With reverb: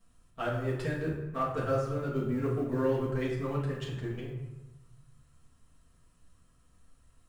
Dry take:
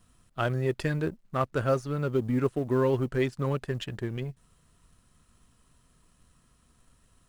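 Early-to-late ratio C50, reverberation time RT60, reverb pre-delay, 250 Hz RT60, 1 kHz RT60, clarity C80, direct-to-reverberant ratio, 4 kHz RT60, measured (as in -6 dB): 3.0 dB, 1.1 s, 4 ms, 1.2 s, 1.1 s, 6.0 dB, -7.0 dB, 0.65 s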